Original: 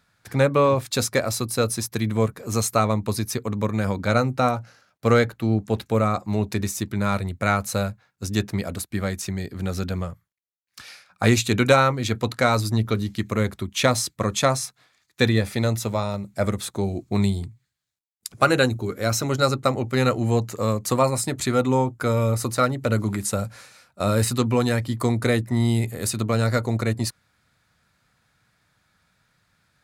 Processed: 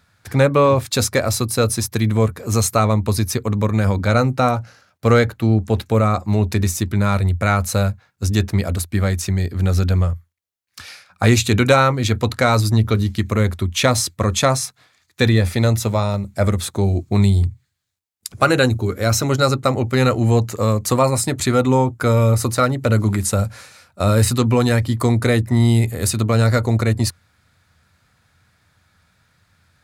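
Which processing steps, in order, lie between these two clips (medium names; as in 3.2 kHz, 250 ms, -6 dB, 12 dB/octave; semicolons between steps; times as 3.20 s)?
peaking EQ 85 Hz +11.5 dB 0.42 oct; in parallel at -2 dB: peak limiter -12.5 dBFS, peak gain reduction 9 dB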